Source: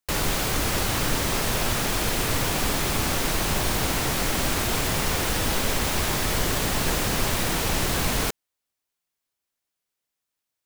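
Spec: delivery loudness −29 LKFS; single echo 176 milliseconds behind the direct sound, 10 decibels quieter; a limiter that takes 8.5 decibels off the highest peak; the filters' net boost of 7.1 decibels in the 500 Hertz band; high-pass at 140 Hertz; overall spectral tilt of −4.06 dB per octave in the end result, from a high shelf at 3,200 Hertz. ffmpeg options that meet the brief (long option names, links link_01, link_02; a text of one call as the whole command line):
ffmpeg -i in.wav -af "highpass=140,equalizer=frequency=500:width_type=o:gain=9,highshelf=frequency=3200:gain=-7,alimiter=limit=-19.5dB:level=0:latency=1,aecho=1:1:176:0.316,volume=-1dB" out.wav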